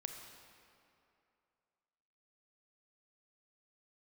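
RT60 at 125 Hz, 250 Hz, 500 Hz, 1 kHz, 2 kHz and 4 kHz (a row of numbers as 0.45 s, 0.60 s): 2.3 s, 2.5 s, 2.7 s, 2.7 s, 2.3 s, 1.8 s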